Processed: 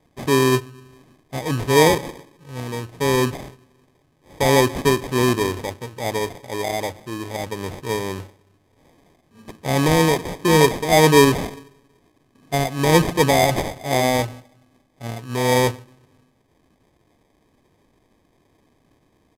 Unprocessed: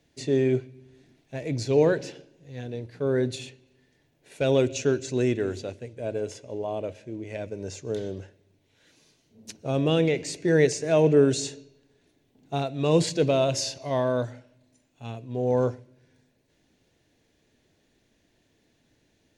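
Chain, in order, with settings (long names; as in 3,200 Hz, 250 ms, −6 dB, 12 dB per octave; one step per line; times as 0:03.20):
sample-rate reduction 1,400 Hz, jitter 0%
downsampling to 32,000 Hz
level +6 dB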